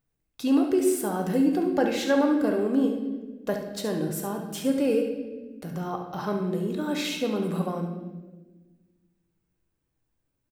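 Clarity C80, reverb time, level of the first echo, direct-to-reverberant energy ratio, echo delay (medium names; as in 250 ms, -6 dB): 7.5 dB, 1.3 s, -8.5 dB, 1.5 dB, 70 ms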